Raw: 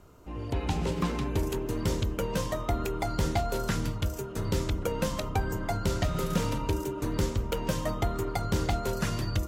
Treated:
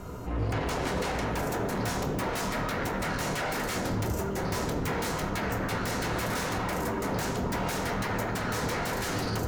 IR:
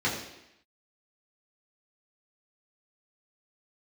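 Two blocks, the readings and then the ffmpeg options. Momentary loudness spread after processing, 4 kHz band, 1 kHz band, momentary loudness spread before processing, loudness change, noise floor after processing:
1 LU, +2.0 dB, +3.0 dB, 3 LU, +0.5 dB, -32 dBFS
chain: -filter_complex "[0:a]aeval=exprs='0.168*sin(PI/2*7.94*val(0)/0.168)':c=same,alimiter=limit=-21dB:level=0:latency=1,asplit=2[a][b];[1:a]atrim=start_sample=2205,lowshelf=f=81:g=7.5[c];[b][c]afir=irnorm=-1:irlink=0,volume=-13.5dB[d];[a][d]amix=inputs=2:normalize=0,volume=-9dB"

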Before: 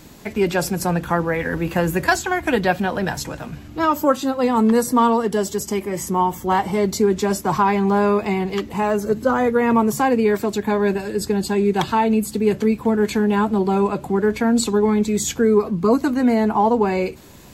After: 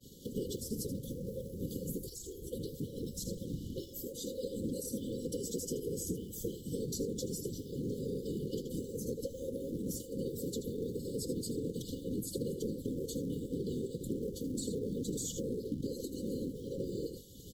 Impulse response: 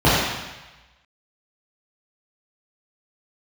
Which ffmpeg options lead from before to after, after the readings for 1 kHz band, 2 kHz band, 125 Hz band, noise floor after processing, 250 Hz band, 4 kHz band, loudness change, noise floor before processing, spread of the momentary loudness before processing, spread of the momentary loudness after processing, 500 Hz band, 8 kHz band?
under -40 dB, under -40 dB, -14.0 dB, -49 dBFS, -19.0 dB, -15.5 dB, -19.5 dB, -38 dBFS, 6 LU, 4 LU, -20.0 dB, -12.5 dB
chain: -filter_complex "[0:a]asplit=2[a][b];[b]aecho=0:1:78:0.282[c];[a][c]amix=inputs=2:normalize=0,afreqshift=23,superequalizer=6b=0.355:11b=3.55,afftfilt=real='hypot(re,im)*cos(2*PI*random(0))':imag='hypot(re,im)*sin(2*PI*random(1))':win_size=512:overlap=0.75,acrossover=split=92|2300|5800[d][e][f][g];[d]acompressor=threshold=-45dB:ratio=4[h];[e]acompressor=threshold=-34dB:ratio=4[i];[f]acompressor=threshold=-50dB:ratio=4[j];[g]acompressor=threshold=-43dB:ratio=4[k];[h][i][j][k]amix=inputs=4:normalize=0,asplit=2[l][m];[m]acrusher=bits=4:mode=log:mix=0:aa=0.000001,volume=-5.5dB[n];[l][n]amix=inputs=2:normalize=0,agate=range=-33dB:threshold=-39dB:ratio=3:detection=peak,adynamicequalizer=threshold=0.00112:dfrequency=3100:dqfactor=4.6:tfrequency=3100:tqfactor=4.6:attack=5:release=100:ratio=0.375:range=3:mode=cutabove:tftype=bell,acompressor=threshold=-34dB:ratio=6,afftfilt=real='re*(1-between(b*sr/4096,550,2900))':imag='im*(1-between(b*sr/4096,550,2900))':win_size=4096:overlap=0.75,volume=1dB"

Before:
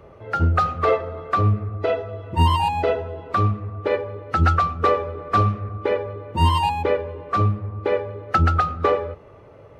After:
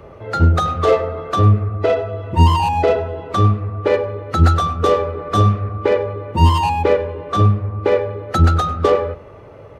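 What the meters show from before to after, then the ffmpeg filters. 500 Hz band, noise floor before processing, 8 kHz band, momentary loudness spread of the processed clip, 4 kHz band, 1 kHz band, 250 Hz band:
+6.0 dB, -46 dBFS, n/a, 7 LU, +4.0 dB, +2.5 dB, +6.5 dB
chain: -filter_complex "[0:a]acrossover=split=680[a][b];[b]asoftclip=type=tanh:threshold=-25dB[c];[a][c]amix=inputs=2:normalize=0,asplit=2[d][e];[e]adelay=99.13,volume=-18dB,highshelf=f=4k:g=-2.23[f];[d][f]amix=inputs=2:normalize=0,volume=6.5dB"

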